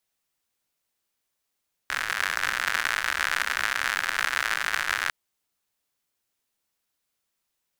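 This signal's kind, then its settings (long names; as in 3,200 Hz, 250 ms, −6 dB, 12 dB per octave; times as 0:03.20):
rain-like ticks over hiss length 3.20 s, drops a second 110, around 1,600 Hz, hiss −22.5 dB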